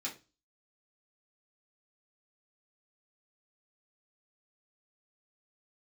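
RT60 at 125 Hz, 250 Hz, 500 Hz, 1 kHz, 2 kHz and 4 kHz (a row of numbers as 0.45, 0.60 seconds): 0.40, 0.35, 0.30, 0.25, 0.25, 0.30 seconds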